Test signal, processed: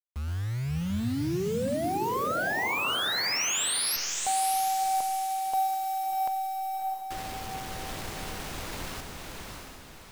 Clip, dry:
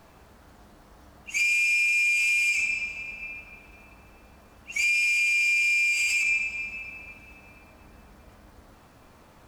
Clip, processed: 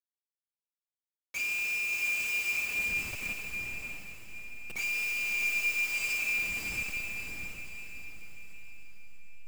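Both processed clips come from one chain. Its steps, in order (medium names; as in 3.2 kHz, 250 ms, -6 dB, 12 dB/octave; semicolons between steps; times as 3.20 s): send-on-delta sampling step -28 dBFS; echo that smears into a reverb 644 ms, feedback 42%, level -3 dB; trim -8.5 dB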